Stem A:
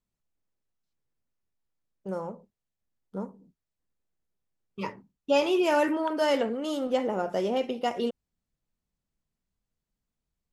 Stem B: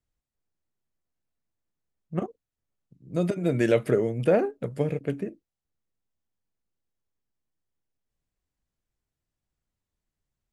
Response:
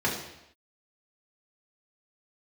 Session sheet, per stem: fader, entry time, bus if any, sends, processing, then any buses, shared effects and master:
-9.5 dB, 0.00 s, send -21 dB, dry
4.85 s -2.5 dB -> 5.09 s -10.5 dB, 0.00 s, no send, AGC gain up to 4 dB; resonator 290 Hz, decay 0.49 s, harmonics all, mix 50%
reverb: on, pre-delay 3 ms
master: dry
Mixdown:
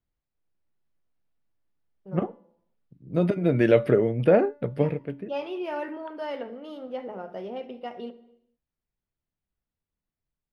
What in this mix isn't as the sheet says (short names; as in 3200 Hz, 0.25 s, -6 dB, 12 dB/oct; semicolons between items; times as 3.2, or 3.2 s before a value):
stem B -2.5 dB -> +4.5 dB; master: extra running mean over 6 samples